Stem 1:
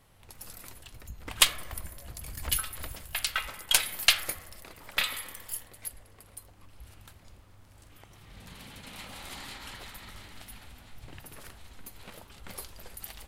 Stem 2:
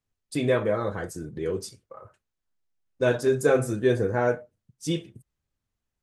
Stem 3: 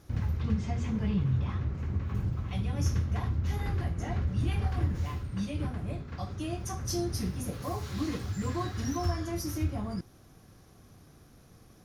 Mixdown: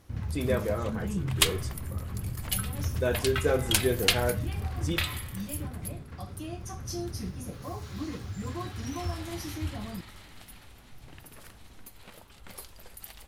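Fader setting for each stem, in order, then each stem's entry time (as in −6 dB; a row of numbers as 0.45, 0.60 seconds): −2.5, −5.5, −3.5 decibels; 0.00, 0.00, 0.00 seconds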